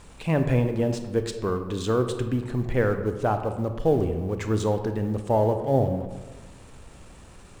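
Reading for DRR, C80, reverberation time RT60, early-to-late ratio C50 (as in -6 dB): 7.0 dB, 10.5 dB, 1.3 s, 8.5 dB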